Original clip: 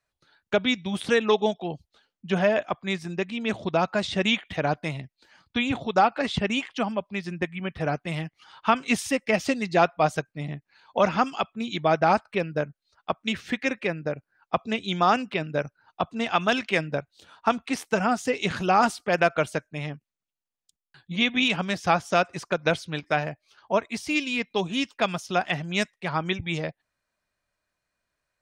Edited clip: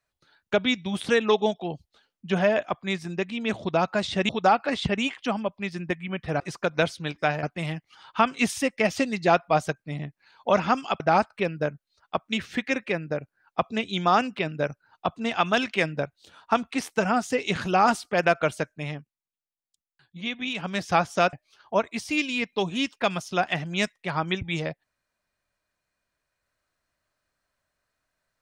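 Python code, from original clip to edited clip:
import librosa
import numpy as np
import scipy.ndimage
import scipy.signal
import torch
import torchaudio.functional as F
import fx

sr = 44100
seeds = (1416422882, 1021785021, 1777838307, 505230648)

y = fx.edit(x, sr, fx.cut(start_s=4.29, length_s=1.52),
    fx.cut(start_s=11.49, length_s=0.46),
    fx.fade_down_up(start_s=19.83, length_s=1.93, db=-8.0, fade_s=0.26),
    fx.move(start_s=22.28, length_s=1.03, to_s=7.92), tone=tone)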